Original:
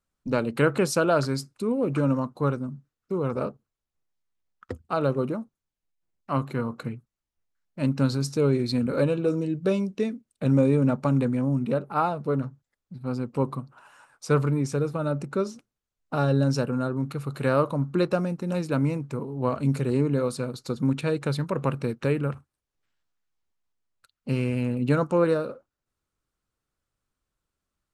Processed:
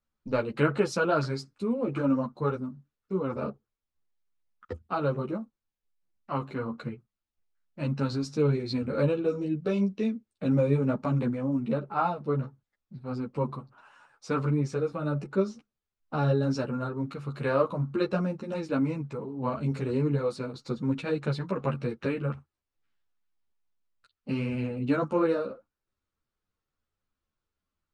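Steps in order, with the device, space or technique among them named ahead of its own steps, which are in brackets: string-machine ensemble chorus (ensemble effect; LPF 5300 Hz 12 dB/oct)

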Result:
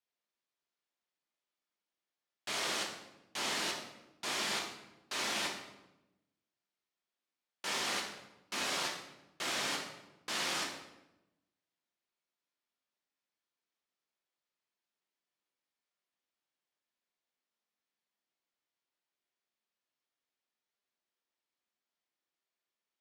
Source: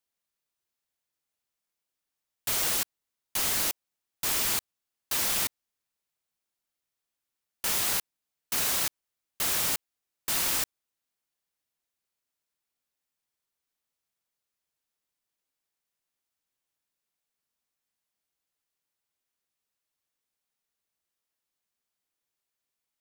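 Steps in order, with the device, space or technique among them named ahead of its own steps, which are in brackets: supermarket ceiling speaker (BPF 210–5000 Hz; reverb RT60 1.0 s, pre-delay 4 ms, DRR -1 dB); gain -5 dB

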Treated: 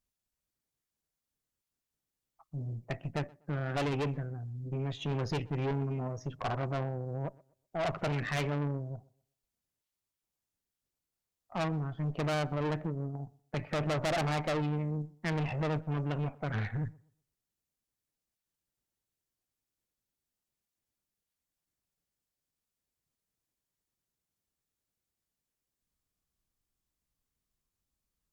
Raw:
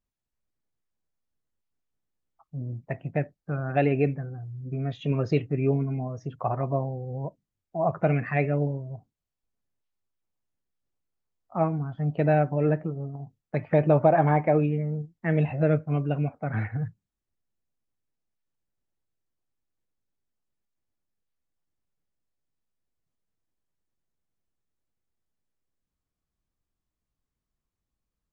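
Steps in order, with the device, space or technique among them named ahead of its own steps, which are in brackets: rockabilly slapback (tube stage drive 29 dB, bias 0.55; tape echo 0.125 s, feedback 31%, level -21.5 dB, low-pass 1600 Hz); high shelf 3400 Hz +8.5 dB

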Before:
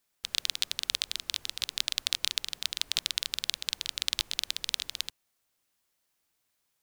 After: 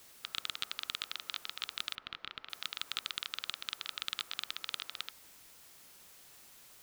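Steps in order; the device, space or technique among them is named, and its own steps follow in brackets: drive-through speaker (BPF 370–3200 Hz; bell 1300 Hz +11 dB 0.32 oct; hard clip -15 dBFS, distortion -14 dB; white noise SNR 14 dB); 1.95–2.5 air absorption 330 m; gain -2.5 dB

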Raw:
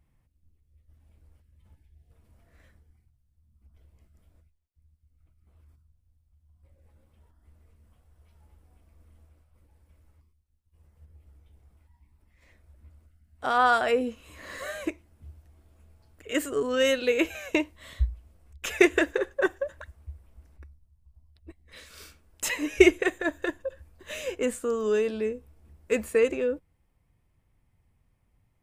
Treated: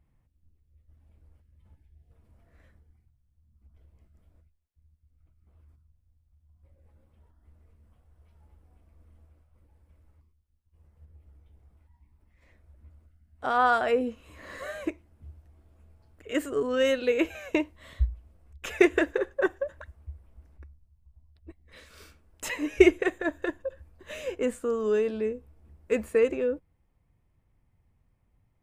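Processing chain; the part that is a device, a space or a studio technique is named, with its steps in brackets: behind a face mask (high shelf 2600 Hz -8 dB)

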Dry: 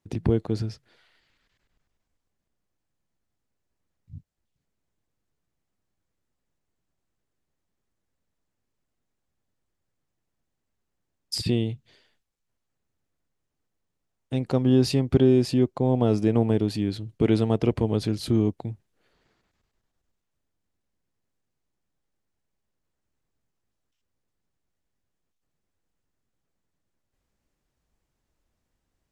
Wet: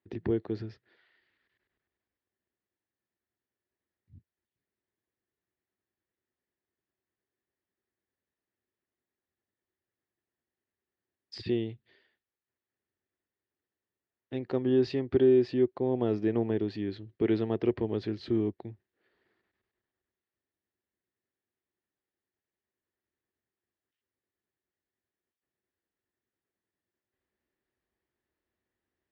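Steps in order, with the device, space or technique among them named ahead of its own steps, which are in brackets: guitar cabinet (speaker cabinet 88–4300 Hz, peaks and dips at 150 Hz -9 dB, 370 Hz +9 dB, 1800 Hz +9 dB); gain -8.5 dB

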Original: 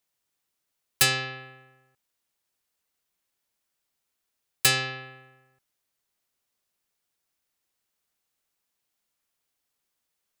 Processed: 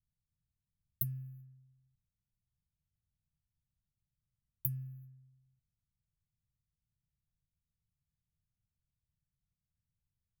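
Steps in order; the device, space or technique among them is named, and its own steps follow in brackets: cassette deck with a dynamic noise filter (white noise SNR 28 dB; low-pass opened by the level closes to 310 Hz, open at -31 dBFS); inverse Chebyshev band-stop 370–7900 Hz, stop band 50 dB; gain -2 dB

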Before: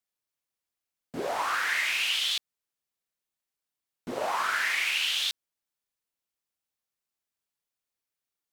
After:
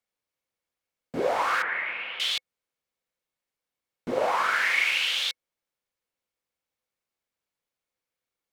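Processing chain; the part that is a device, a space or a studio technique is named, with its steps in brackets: 1.62–2.2 Bessel low-pass 1500 Hz, order 4; inside a helmet (high shelf 4700 Hz -9 dB; small resonant body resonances 510/2200 Hz, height 8 dB); gain +4 dB

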